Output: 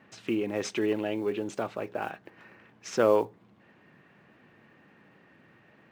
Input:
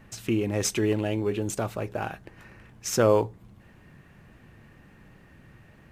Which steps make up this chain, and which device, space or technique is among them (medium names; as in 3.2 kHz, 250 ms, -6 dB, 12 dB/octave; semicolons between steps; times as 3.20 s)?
early digital voice recorder (band-pass 230–3900 Hz; block-companded coder 7-bit); trim -1.5 dB